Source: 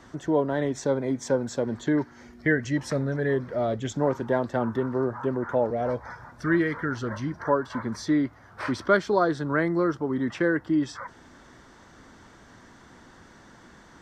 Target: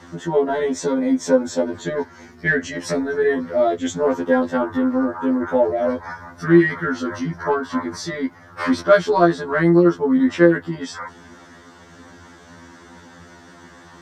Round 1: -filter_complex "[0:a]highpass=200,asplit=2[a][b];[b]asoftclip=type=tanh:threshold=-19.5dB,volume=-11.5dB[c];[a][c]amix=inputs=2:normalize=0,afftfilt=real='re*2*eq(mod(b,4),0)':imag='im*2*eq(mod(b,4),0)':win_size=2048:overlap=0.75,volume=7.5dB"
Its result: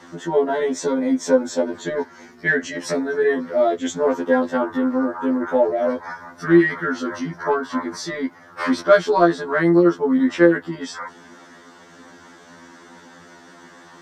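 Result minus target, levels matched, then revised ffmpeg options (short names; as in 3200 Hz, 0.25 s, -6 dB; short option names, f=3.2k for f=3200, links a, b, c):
125 Hz band -4.5 dB
-filter_complex "[0:a]highpass=66,asplit=2[a][b];[b]asoftclip=type=tanh:threshold=-19.5dB,volume=-11.5dB[c];[a][c]amix=inputs=2:normalize=0,afftfilt=real='re*2*eq(mod(b,4),0)':imag='im*2*eq(mod(b,4),0)':win_size=2048:overlap=0.75,volume=7.5dB"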